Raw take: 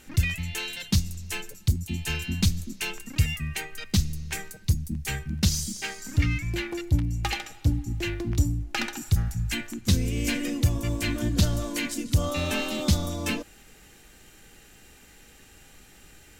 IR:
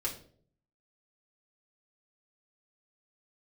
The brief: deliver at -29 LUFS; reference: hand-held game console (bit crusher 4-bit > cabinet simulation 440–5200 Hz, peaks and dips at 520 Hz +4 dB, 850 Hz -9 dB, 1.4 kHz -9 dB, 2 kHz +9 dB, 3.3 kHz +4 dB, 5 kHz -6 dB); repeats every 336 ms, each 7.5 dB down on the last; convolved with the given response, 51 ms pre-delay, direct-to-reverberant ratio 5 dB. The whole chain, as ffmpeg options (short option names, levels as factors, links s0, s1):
-filter_complex "[0:a]aecho=1:1:336|672|1008|1344|1680:0.422|0.177|0.0744|0.0312|0.0131,asplit=2[s0][s1];[1:a]atrim=start_sample=2205,adelay=51[s2];[s1][s2]afir=irnorm=-1:irlink=0,volume=0.398[s3];[s0][s3]amix=inputs=2:normalize=0,acrusher=bits=3:mix=0:aa=0.000001,highpass=440,equalizer=f=520:t=q:w=4:g=4,equalizer=f=850:t=q:w=4:g=-9,equalizer=f=1400:t=q:w=4:g=-9,equalizer=f=2000:t=q:w=4:g=9,equalizer=f=3300:t=q:w=4:g=4,equalizer=f=5000:t=q:w=4:g=-6,lowpass=f=5200:w=0.5412,lowpass=f=5200:w=1.3066,volume=0.841"